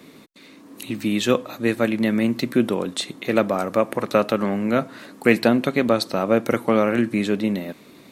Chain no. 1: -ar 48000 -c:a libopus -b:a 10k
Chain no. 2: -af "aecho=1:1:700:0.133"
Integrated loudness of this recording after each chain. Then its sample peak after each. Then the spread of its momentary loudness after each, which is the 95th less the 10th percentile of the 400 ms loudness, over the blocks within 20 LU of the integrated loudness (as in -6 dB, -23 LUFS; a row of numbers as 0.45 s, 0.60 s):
-22.5 LUFS, -21.5 LUFS; -2.5 dBFS, -2.0 dBFS; 8 LU, 8 LU